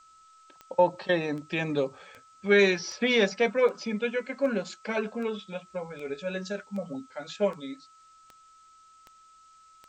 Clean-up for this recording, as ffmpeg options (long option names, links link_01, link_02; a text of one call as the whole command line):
ffmpeg -i in.wav -af "adeclick=threshold=4,bandreject=frequency=1300:width=30,agate=range=-21dB:threshold=-49dB" out.wav